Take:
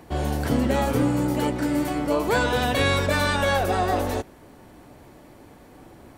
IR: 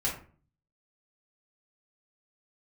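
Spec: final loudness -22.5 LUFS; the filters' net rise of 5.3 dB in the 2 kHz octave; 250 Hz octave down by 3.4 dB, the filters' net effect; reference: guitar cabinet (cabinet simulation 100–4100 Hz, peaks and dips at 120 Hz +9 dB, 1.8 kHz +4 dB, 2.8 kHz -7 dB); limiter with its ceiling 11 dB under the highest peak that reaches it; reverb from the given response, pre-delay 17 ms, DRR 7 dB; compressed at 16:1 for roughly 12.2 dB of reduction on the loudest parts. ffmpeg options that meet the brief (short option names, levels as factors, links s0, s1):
-filter_complex "[0:a]equalizer=f=250:t=o:g=-4.5,equalizer=f=2000:t=o:g=5,acompressor=threshold=0.0355:ratio=16,alimiter=level_in=2.24:limit=0.0631:level=0:latency=1,volume=0.447,asplit=2[s0][s1];[1:a]atrim=start_sample=2205,adelay=17[s2];[s1][s2]afir=irnorm=-1:irlink=0,volume=0.211[s3];[s0][s3]amix=inputs=2:normalize=0,highpass=100,equalizer=f=120:t=q:w=4:g=9,equalizer=f=1800:t=q:w=4:g=4,equalizer=f=2800:t=q:w=4:g=-7,lowpass=f=4100:w=0.5412,lowpass=f=4100:w=1.3066,volume=5.96"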